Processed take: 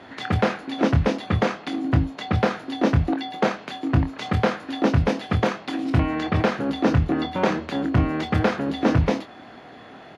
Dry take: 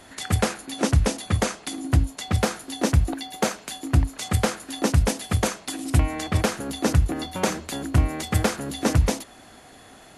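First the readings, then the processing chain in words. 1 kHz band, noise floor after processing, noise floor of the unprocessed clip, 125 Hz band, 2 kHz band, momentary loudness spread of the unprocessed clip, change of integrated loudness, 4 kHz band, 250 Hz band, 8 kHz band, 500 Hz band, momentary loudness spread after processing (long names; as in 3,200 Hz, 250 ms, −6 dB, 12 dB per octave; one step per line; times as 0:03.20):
+3.5 dB, −44 dBFS, −48 dBFS, 0.0 dB, +2.5 dB, 5 LU, +1.5 dB, −2.0 dB, +4.5 dB, −16.5 dB, +3.5 dB, 5 LU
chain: high-pass filter 120 Hz 12 dB per octave
in parallel at +0.5 dB: brickwall limiter −18 dBFS, peak gain reduction 11 dB
on the sum: high-frequency loss of the air 280 metres
double-tracking delay 25 ms −8 dB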